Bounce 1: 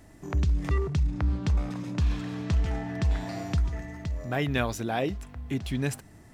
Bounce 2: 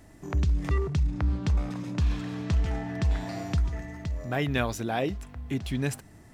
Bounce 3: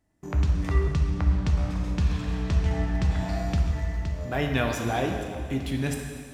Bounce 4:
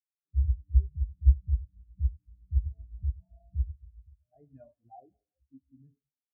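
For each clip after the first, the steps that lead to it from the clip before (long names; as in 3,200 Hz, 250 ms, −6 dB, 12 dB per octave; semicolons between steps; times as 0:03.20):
no processing that can be heard
noise gate with hold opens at −39 dBFS; dense smooth reverb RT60 2.2 s, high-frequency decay 0.9×, DRR 1.5 dB
dynamic equaliser 840 Hz, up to +4 dB, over −38 dBFS, Q 0.71; every bin expanded away from the loudest bin 4 to 1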